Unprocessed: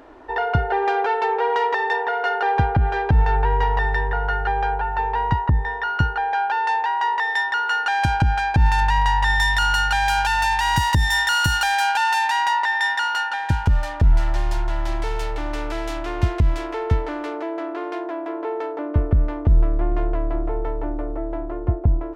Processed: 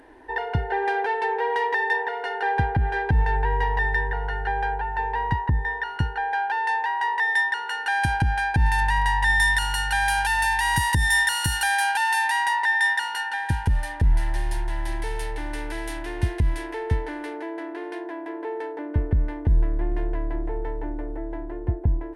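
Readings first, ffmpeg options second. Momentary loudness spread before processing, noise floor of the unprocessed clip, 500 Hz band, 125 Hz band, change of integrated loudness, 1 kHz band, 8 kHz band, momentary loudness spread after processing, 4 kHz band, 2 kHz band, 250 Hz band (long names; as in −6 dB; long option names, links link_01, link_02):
10 LU, −29 dBFS, −5.0 dB, −4.0 dB, −3.0 dB, −4.5 dB, +1.5 dB, 12 LU, −4.0 dB, −0.5 dB, −4.0 dB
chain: -af "superequalizer=8b=0.562:10b=0.355:11b=1.78:16b=3.98,volume=-4dB"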